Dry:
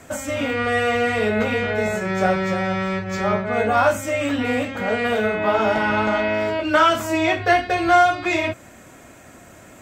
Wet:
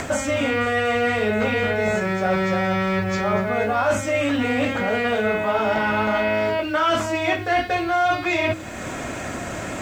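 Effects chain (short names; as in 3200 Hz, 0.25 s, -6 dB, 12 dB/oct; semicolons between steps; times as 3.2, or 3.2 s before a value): in parallel at +2 dB: upward compressor, threshold -20 dBFS; on the sum: LPF 6700 Hz 12 dB/oct; reverse; compressor, threshold -18 dBFS, peak gain reduction 14.5 dB; reverse; thin delay 0.241 s, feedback 80%, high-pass 4200 Hz, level -16.5 dB; bit-crush 9-bit; de-hum 45.49 Hz, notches 11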